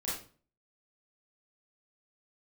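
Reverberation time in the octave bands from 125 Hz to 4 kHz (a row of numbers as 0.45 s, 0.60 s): 0.55 s, 0.50 s, 0.45 s, 0.40 s, 0.35 s, 0.35 s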